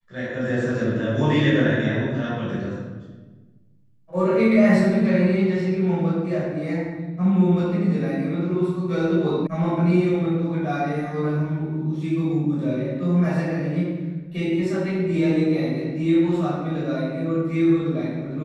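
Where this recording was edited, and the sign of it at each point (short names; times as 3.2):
9.47 sound cut off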